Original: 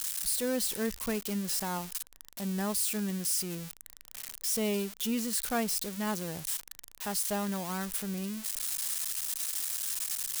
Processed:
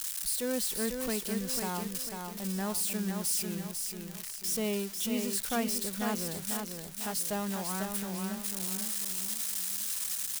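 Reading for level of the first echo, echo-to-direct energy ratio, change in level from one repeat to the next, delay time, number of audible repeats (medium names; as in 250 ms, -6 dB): -5.0 dB, -4.0 dB, -7.5 dB, 496 ms, 4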